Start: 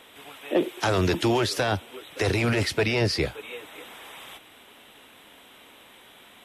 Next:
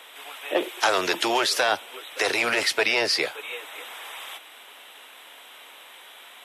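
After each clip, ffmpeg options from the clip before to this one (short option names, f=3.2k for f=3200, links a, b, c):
-af "highpass=630,volume=5.5dB"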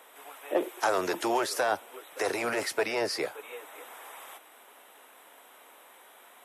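-af "equalizer=f=3.3k:t=o:w=1.7:g=-13.5,volume=-2dB"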